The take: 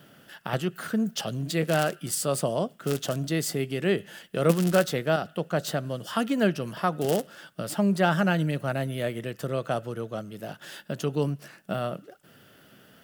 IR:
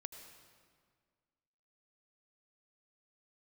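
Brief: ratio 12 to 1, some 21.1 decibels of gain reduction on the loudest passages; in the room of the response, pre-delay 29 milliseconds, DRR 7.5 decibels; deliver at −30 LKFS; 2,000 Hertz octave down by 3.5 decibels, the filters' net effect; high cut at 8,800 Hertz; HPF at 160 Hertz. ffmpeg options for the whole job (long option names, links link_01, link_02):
-filter_complex "[0:a]highpass=160,lowpass=8800,equalizer=frequency=2000:width_type=o:gain=-5,acompressor=threshold=-38dB:ratio=12,asplit=2[link_01][link_02];[1:a]atrim=start_sample=2205,adelay=29[link_03];[link_02][link_03]afir=irnorm=-1:irlink=0,volume=-3.5dB[link_04];[link_01][link_04]amix=inputs=2:normalize=0,volume=12.5dB"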